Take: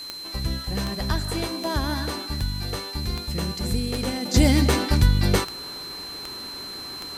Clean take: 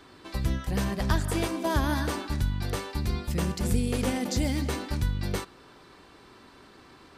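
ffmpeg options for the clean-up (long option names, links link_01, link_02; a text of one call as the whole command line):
ffmpeg -i in.wav -af "adeclick=threshold=4,bandreject=frequency=4100:width=30,afwtdn=0.005,asetnsamples=nb_out_samples=441:pad=0,asendcmd='4.34 volume volume -10dB',volume=0dB" out.wav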